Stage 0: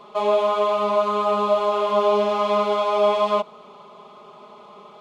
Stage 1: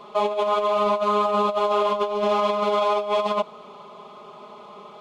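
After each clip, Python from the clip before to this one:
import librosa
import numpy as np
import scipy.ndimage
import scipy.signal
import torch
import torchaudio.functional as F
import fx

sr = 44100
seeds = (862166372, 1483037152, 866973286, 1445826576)

y = fx.over_compress(x, sr, threshold_db=-21.0, ratio=-0.5)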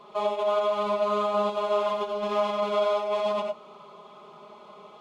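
y = fx.rev_gated(x, sr, seeds[0], gate_ms=120, shape='rising', drr_db=2.0)
y = F.gain(torch.from_numpy(y), -7.0).numpy()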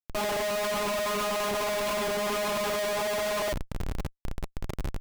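y = fx.high_shelf(x, sr, hz=4100.0, db=8.5)
y = fx.schmitt(y, sr, flips_db=-39.0)
y = F.gain(torch.from_numpy(y), -1.5).numpy()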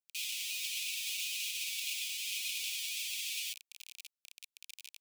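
y = scipy.signal.sosfilt(scipy.signal.cheby1(6, 1.0, 2400.0, 'highpass', fs=sr, output='sos'), x)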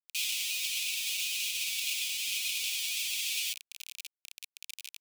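y = fx.rider(x, sr, range_db=10, speed_s=0.5)
y = fx.quant_companded(y, sr, bits=6)
y = F.gain(torch.from_numpy(y), 5.0).numpy()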